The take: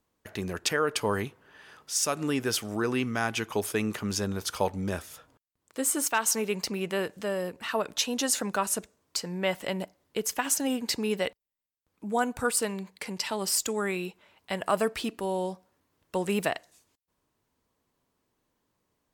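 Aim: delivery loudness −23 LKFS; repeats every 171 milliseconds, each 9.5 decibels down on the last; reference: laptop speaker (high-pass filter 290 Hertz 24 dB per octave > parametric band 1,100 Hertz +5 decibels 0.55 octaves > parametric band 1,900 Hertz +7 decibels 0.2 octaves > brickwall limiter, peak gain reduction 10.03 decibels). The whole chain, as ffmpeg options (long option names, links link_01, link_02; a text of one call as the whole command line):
ffmpeg -i in.wav -af "highpass=frequency=290:width=0.5412,highpass=frequency=290:width=1.3066,equalizer=frequency=1100:width_type=o:width=0.55:gain=5,equalizer=frequency=1900:width_type=o:width=0.2:gain=7,aecho=1:1:171|342|513|684:0.335|0.111|0.0365|0.012,volume=9dB,alimiter=limit=-11dB:level=0:latency=1" out.wav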